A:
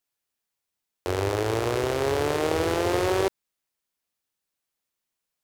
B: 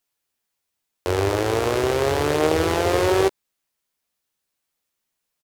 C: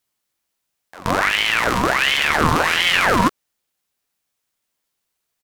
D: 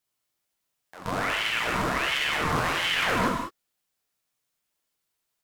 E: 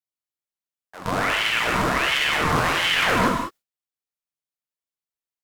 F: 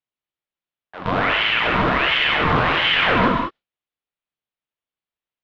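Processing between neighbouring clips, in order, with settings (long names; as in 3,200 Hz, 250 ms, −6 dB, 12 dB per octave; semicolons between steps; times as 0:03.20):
double-tracking delay 13 ms −9 dB; level +4 dB
echo ahead of the sound 126 ms −19 dB; ring modulator whose carrier an LFO sweeps 1,600 Hz, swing 65%, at 1.4 Hz; level +5.5 dB
brickwall limiter −10.5 dBFS, peak gain reduction 9 dB; reverb whose tail is shaped and stops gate 220 ms flat, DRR −0.5 dB; level −6.5 dB
noise gate with hold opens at −37 dBFS; level +5 dB
Chebyshev low-pass filter 3,400 Hz, order 3; in parallel at −1.5 dB: brickwall limiter −16 dBFS, peak gain reduction 6.5 dB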